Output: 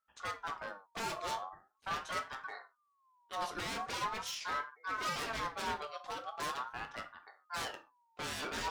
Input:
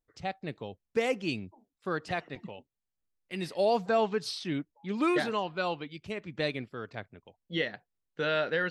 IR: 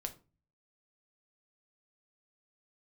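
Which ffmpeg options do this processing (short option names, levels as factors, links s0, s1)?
-filter_complex "[0:a]aeval=exprs='0.0266*(abs(mod(val(0)/0.0266+3,4)-2)-1)':c=same[s0];[1:a]atrim=start_sample=2205,atrim=end_sample=6174[s1];[s0][s1]afir=irnorm=-1:irlink=0,aeval=exprs='val(0)*sin(2*PI*1100*n/s+1100*0.2/0.42*sin(2*PI*0.42*n/s))':c=same,volume=1.19"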